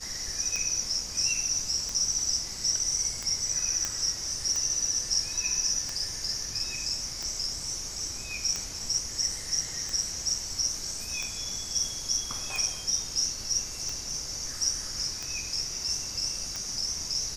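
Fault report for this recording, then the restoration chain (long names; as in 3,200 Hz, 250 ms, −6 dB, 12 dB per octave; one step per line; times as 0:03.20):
scratch tick 45 rpm −19 dBFS
0:03.85: click −14 dBFS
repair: click removal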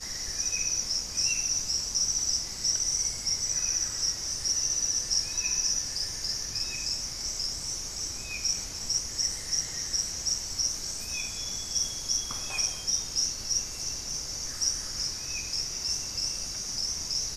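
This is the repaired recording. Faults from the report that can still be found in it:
none of them is left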